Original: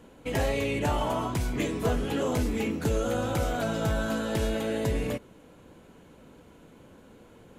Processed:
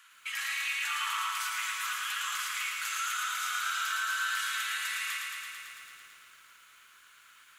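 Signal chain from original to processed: Chebyshev high-pass 1.2 kHz, order 5; peak limiter -32.5 dBFS, peak gain reduction 10 dB; bit-crushed delay 111 ms, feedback 80%, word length 12-bit, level -3.5 dB; trim +6 dB

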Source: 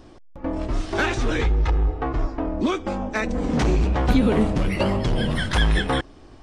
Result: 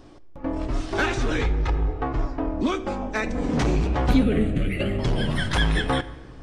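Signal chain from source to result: 4.23–4.99 s: static phaser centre 2.3 kHz, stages 4; reverberation RT60 1.8 s, pre-delay 7 ms, DRR 11 dB; trim -1.5 dB

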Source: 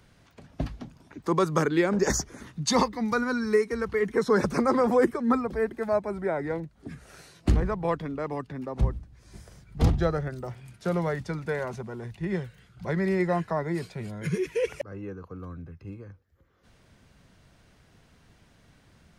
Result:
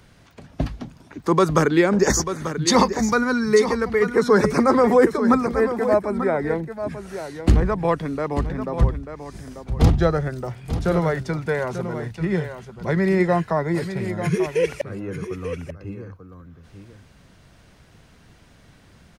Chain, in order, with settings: delay 890 ms -10 dB; trim +6.5 dB

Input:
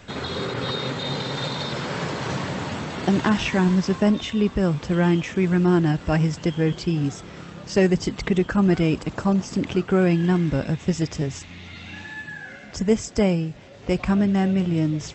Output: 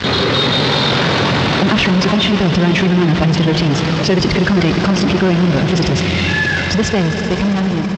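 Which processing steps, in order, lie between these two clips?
fade out at the end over 2.98 s; in parallel at -6 dB: fuzz box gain 41 dB, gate -43 dBFS; on the sum: low-pass 4.7 kHz 24 dB/octave; treble shelf 3.3 kHz +6.5 dB; echo with a slow build-up 125 ms, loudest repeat 5, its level -16 dB; tempo 1.9×; high-pass 52 Hz; level flattener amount 50%

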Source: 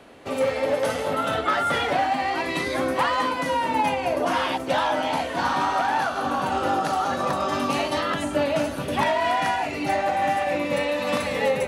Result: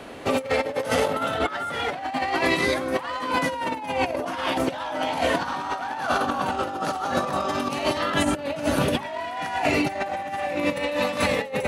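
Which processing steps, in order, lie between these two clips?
compressor with a negative ratio -28 dBFS, ratio -0.5; trim +3.5 dB

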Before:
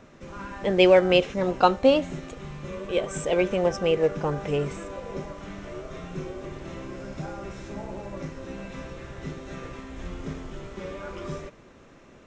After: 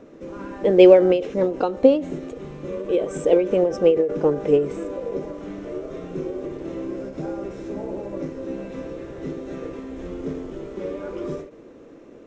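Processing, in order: small resonant body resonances 320/450 Hz, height 16 dB, ringing for 30 ms; endings held to a fixed fall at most 120 dB/s; trim -4 dB

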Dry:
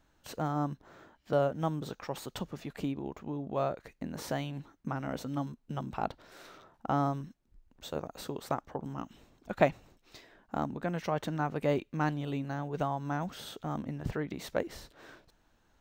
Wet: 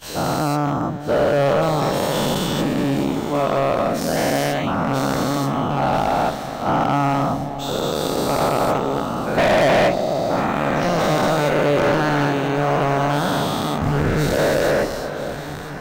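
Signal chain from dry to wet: every event in the spectrogram widened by 480 ms; echo whose repeats swap between lows and highs 493 ms, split 840 Hz, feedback 81%, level -11.5 dB; overload inside the chain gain 21.5 dB; trim +8.5 dB

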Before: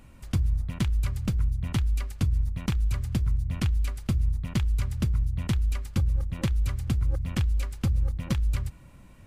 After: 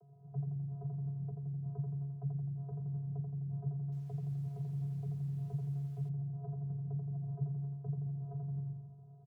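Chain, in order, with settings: tracing distortion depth 0.13 ms; steep low-pass 720 Hz 36 dB/octave; resonant low shelf 410 Hz -9 dB, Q 1.5; upward compressor, threshold -53 dBFS; frequency shift +52 Hz; comb 2.7 ms, depth 33%; frequency-shifting echo 133 ms, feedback 64%, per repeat -48 Hz, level -17.5 dB; compression 4:1, threshold -40 dBFS, peak gain reduction 9 dB; feedback delay 85 ms, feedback 53%, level -4 dB; vocoder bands 16, square 140 Hz; 3.78–6.09 s: bit-crushed delay 142 ms, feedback 55%, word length 10-bit, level -13.5 dB; trim +1 dB

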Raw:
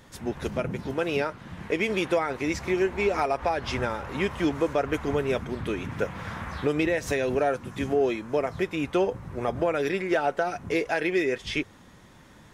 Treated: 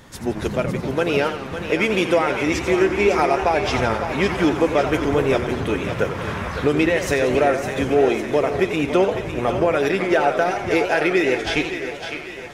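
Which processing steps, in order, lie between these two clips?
thinning echo 556 ms, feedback 57%, high-pass 420 Hz, level -8 dB; modulated delay 87 ms, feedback 62%, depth 204 cents, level -10 dB; trim +6.5 dB

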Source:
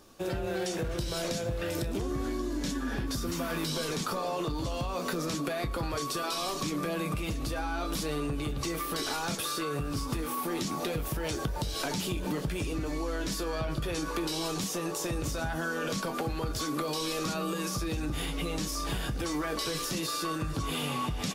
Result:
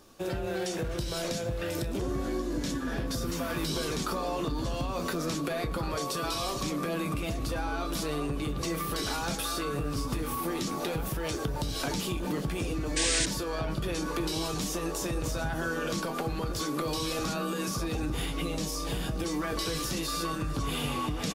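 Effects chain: echo from a far wall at 300 m, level -6 dB; 12.96–13.26 s: painted sound noise 1.5–9.4 kHz -28 dBFS; 18.47–19.42 s: peaking EQ 1.4 kHz -4.5 dB 0.98 oct

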